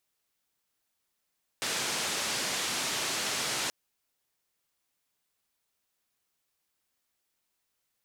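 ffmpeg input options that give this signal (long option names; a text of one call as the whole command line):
ffmpeg -f lavfi -i "anoisesrc=color=white:duration=2.08:sample_rate=44100:seed=1,highpass=frequency=130,lowpass=frequency=7000,volume=-22.3dB" out.wav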